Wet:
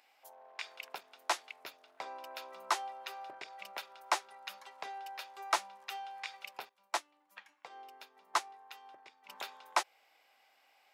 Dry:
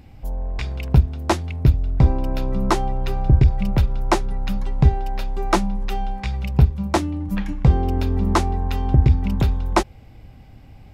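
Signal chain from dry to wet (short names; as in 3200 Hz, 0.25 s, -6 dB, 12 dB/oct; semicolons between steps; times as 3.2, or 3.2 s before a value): Bessel high-pass 990 Hz, order 4; 6.69–9.29 upward expander 1.5:1, over -47 dBFS; gain -7 dB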